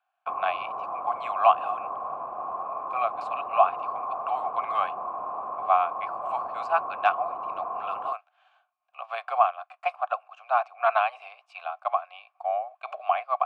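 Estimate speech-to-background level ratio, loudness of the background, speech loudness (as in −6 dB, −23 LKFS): 5.0 dB, −33.5 LKFS, −28.5 LKFS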